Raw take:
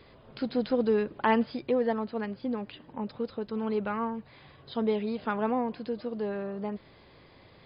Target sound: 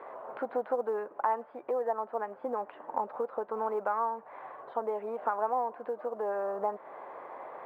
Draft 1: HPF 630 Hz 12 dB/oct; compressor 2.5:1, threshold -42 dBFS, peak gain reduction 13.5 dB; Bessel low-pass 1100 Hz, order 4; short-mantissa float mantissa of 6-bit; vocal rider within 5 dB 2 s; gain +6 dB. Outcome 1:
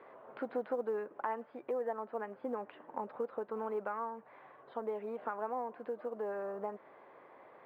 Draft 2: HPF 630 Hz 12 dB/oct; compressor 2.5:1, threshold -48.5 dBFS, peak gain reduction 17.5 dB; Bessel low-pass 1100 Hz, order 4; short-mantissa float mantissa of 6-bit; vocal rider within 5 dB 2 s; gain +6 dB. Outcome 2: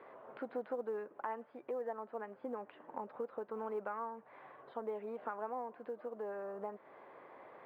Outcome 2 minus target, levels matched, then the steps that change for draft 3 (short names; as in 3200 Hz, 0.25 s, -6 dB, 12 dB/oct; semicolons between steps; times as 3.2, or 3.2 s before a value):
1000 Hz band -2.5 dB
add after Bessel low-pass: bell 830 Hz +12.5 dB 2.1 oct